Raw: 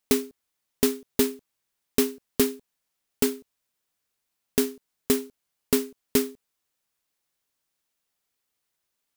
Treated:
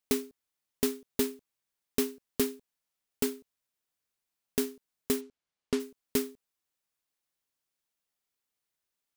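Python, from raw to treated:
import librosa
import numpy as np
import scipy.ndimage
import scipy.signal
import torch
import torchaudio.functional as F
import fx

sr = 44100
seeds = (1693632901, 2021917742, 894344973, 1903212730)

y = fx.bessel_lowpass(x, sr, hz=4900.0, order=2, at=(5.2, 5.79), fade=0.02)
y = y * 10.0 ** (-6.5 / 20.0)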